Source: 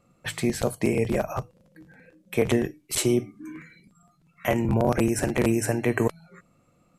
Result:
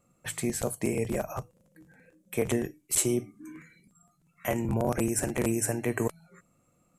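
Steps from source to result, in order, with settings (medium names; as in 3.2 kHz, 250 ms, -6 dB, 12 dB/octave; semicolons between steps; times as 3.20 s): resonant high shelf 5.9 kHz +6.5 dB, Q 1.5; trim -5.5 dB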